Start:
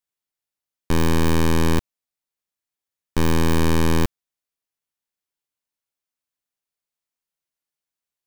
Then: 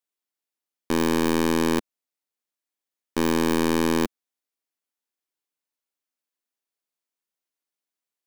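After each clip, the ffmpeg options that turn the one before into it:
ffmpeg -i in.wav -af "lowshelf=frequency=170:width_type=q:width=1.5:gain=-13.5,volume=-1.5dB" out.wav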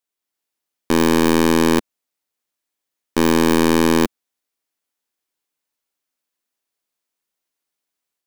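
ffmpeg -i in.wav -af "dynaudnorm=framelen=170:gausssize=3:maxgain=4dB,volume=3dB" out.wav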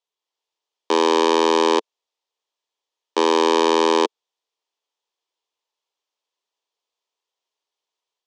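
ffmpeg -i in.wav -af "highpass=frequency=370:width=0.5412,highpass=frequency=370:width=1.3066,equalizer=frequency=440:width_type=q:width=4:gain=5,equalizer=frequency=950:width_type=q:width=4:gain=7,equalizer=frequency=1500:width_type=q:width=4:gain=-7,equalizer=frequency=2100:width_type=q:width=4:gain=-4,equalizer=frequency=3300:width_type=q:width=4:gain=5,lowpass=frequency=6600:width=0.5412,lowpass=frequency=6600:width=1.3066" out.wav

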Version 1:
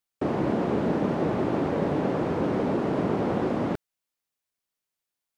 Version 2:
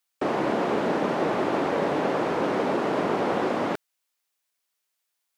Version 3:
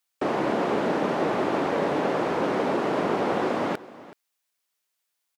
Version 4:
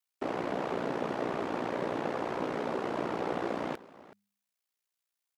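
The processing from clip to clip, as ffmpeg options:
ffmpeg -i in.wav -af "highpass=frequency=760:poles=1,volume=7.5dB" out.wav
ffmpeg -i in.wav -af "aecho=1:1:376:0.119" out.wav
ffmpeg -i in.wav -af "aeval=exprs='val(0)*sin(2*PI*30*n/s)':channel_layout=same,bandreject=frequency=100.9:width_type=h:width=4,bandreject=frequency=201.8:width_type=h:width=4,volume=-5.5dB" out.wav

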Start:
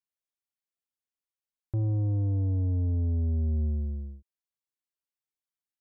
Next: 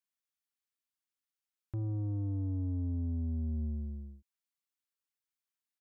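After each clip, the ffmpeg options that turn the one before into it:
ffmpeg -i in.wav -af "firequalizer=gain_entry='entry(130,0);entry(270,7);entry(410,-4);entry(1200,8)':delay=0.05:min_phase=1,volume=-8dB" out.wav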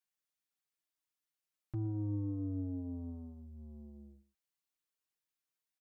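ffmpeg -i in.wav -filter_complex "[0:a]aecho=1:1:6.4:0.82,asplit=2[link_01][link_02];[link_02]adelay=116.6,volume=-16dB,highshelf=frequency=4000:gain=-2.62[link_03];[link_01][link_03]amix=inputs=2:normalize=0,volume=-2.5dB" out.wav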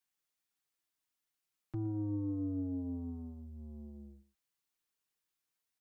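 ffmpeg -i in.wav -filter_complex "[0:a]bandreject=frequency=590:width=12,acrossover=split=130[link_01][link_02];[link_01]acompressor=threshold=-49dB:ratio=6[link_03];[link_03][link_02]amix=inputs=2:normalize=0,volume=3dB" out.wav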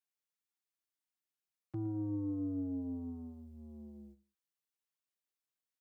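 ffmpeg -i in.wav -af "agate=range=-8dB:threshold=-53dB:ratio=16:detection=peak,highpass=100" out.wav

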